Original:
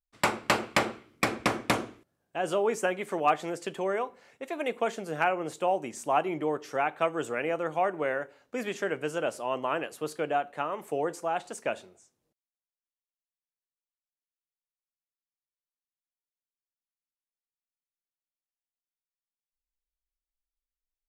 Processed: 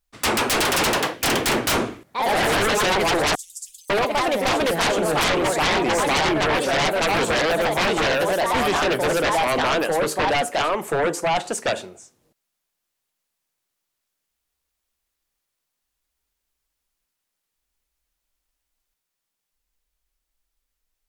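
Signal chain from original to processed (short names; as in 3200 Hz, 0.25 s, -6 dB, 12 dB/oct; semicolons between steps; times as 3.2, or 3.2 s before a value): echoes that change speed 0.162 s, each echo +2 st, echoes 3; 3.35–3.9 inverse Chebyshev band-stop 180–1300 Hz, stop band 80 dB; sine folder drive 17 dB, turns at -10 dBFS; gain -6.5 dB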